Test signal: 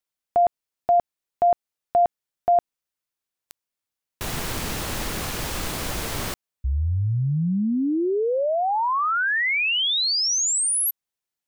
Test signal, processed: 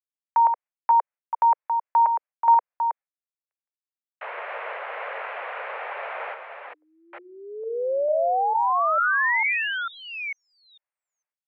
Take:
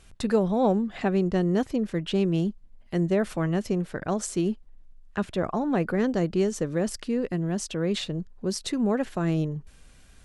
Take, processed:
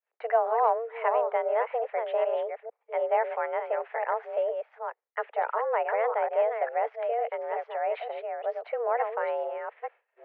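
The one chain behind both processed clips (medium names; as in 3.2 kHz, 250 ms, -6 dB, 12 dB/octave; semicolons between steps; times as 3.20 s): chunks repeated in reverse 449 ms, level -6 dB; expander -38 dBFS, range -39 dB; mistuned SSB +230 Hz 280–2200 Hz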